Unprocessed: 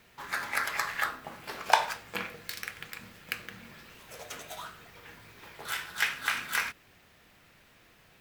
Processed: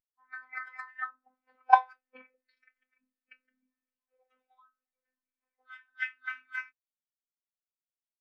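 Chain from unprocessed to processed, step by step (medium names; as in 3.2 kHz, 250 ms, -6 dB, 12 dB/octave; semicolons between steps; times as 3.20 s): level-controlled noise filter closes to 2.9 kHz, open at -26.5 dBFS; robot voice 256 Hz; spectral contrast expander 2.5:1; trim -1 dB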